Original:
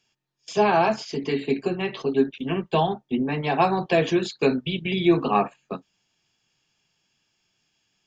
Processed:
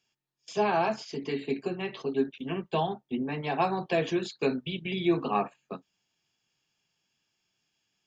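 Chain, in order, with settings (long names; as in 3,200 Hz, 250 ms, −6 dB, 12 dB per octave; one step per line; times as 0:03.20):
low-shelf EQ 64 Hz −6 dB
level −6.5 dB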